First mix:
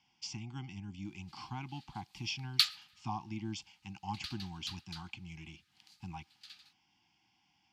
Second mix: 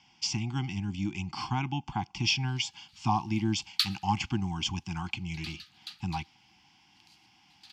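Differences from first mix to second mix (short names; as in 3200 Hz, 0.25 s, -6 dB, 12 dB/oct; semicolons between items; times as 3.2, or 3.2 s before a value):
speech +11.5 dB; background: entry +1.20 s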